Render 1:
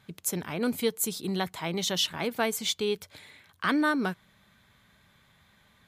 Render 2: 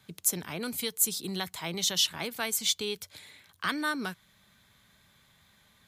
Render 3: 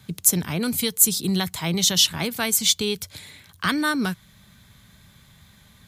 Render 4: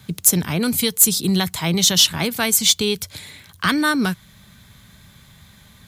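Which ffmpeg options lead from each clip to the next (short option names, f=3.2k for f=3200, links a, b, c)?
-filter_complex "[0:a]acrossover=split=130|980|3700[a][b][c][d];[b]alimiter=level_in=3.5dB:limit=-24dB:level=0:latency=1:release=431,volume=-3.5dB[e];[d]acontrast=82[f];[a][e][c][f]amix=inputs=4:normalize=0,volume=-2.5dB"
-af "bass=f=250:g=10,treble=f=4k:g=3,volume=6.5dB"
-filter_complex "[0:a]asplit=2[a][b];[b]aeval=exprs='0.891*sin(PI/2*2.24*val(0)/0.891)':c=same,volume=-11dB[c];[a][c]amix=inputs=2:normalize=0,acrusher=bits=10:mix=0:aa=0.000001,volume=-1.5dB"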